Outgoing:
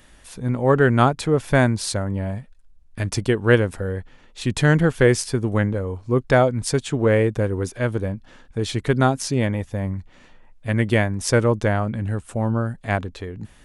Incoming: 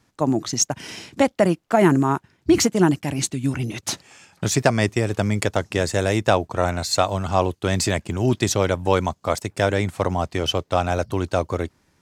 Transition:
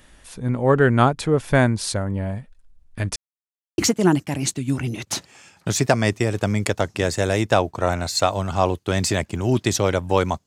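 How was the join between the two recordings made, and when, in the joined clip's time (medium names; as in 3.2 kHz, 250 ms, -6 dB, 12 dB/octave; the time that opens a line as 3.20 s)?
outgoing
3.16–3.78 s: mute
3.78 s: go over to incoming from 2.54 s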